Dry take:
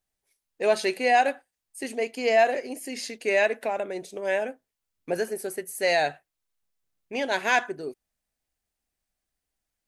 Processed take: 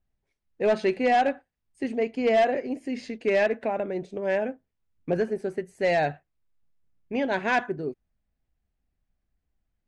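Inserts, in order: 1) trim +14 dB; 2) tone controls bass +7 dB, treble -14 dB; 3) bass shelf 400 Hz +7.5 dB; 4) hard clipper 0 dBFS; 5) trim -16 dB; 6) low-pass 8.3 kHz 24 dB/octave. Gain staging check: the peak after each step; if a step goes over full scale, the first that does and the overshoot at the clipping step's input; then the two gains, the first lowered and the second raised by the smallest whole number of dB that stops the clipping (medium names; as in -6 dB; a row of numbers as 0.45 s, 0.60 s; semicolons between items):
+4.5 dBFS, +4.0 dBFS, +6.5 dBFS, 0.0 dBFS, -16.0 dBFS, -15.5 dBFS; step 1, 6.5 dB; step 1 +7 dB, step 5 -9 dB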